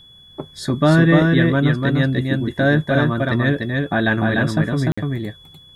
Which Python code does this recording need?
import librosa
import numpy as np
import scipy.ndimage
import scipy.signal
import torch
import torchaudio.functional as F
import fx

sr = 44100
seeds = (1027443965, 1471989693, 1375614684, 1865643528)

y = fx.notch(x, sr, hz=3400.0, q=30.0)
y = fx.fix_interpolate(y, sr, at_s=(4.92,), length_ms=55.0)
y = fx.fix_echo_inverse(y, sr, delay_ms=297, level_db=-3.0)